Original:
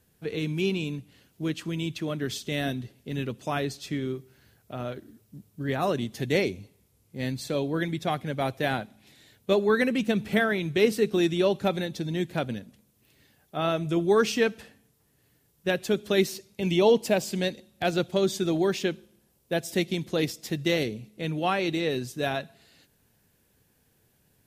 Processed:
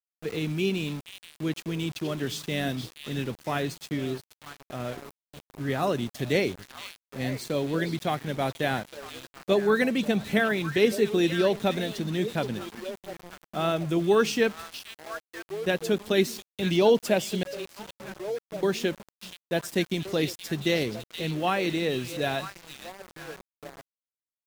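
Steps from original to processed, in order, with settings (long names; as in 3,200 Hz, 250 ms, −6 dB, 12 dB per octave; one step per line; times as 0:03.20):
0:17.43–0:18.63: resonances in every octave C#, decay 0.61 s
echo through a band-pass that steps 474 ms, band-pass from 3,700 Hz, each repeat −1.4 octaves, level −5.5 dB
centre clipping without the shift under −38.5 dBFS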